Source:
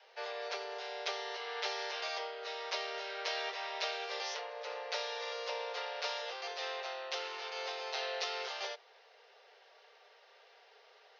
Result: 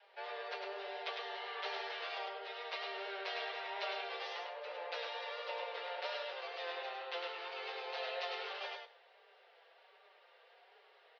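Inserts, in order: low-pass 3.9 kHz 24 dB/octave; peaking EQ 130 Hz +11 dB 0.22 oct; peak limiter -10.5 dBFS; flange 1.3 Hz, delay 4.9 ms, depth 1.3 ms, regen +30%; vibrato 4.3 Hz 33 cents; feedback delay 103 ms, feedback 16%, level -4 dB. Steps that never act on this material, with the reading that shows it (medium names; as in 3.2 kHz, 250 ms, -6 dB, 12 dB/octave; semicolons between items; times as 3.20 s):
peaking EQ 130 Hz: input has nothing below 340 Hz; peak limiter -10.5 dBFS: peak at its input -23.5 dBFS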